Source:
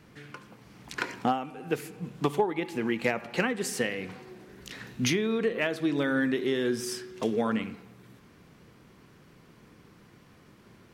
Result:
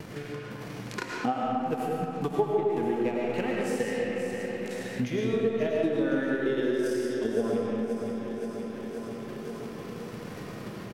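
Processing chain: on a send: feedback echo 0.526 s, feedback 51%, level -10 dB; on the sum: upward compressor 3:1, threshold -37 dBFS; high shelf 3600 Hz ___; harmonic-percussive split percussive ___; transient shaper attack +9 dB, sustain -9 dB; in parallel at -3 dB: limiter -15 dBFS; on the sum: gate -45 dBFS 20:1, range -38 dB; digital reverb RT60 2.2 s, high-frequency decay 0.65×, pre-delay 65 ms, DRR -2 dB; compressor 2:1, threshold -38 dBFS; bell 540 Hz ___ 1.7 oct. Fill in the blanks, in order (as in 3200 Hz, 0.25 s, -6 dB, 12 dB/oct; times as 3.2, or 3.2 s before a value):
+4.5 dB, -15 dB, +6 dB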